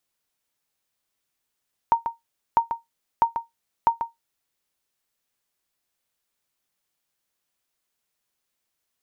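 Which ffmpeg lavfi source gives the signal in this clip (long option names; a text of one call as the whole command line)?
ffmpeg -f lavfi -i "aevalsrc='0.355*(sin(2*PI*925*mod(t,0.65))*exp(-6.91*mod(t,0.65)/0.16)+0.355*sin(2*PI*925*max(mod(t,0.65)-0.14,0))*exp(-6.91*max(mod(t,0.65)-0.14,0)/0.16))':duration=2.6:sample_rate=44100" out.wav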